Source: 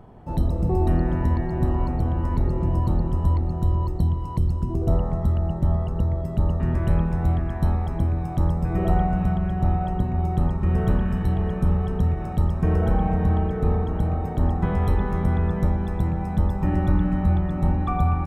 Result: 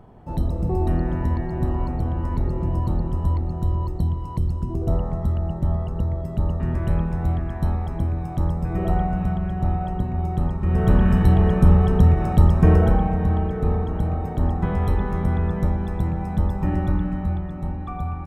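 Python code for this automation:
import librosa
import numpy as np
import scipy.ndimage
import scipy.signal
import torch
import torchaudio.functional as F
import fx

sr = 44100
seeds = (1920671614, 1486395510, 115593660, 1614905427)

y = fx.gain(x, sr, db=fx.line((10.62, -1.0), (11.07, 7.0), (12.68, 7.0), (13.11, 0.0), (16.68, 0.0), (17.7, -7.0)))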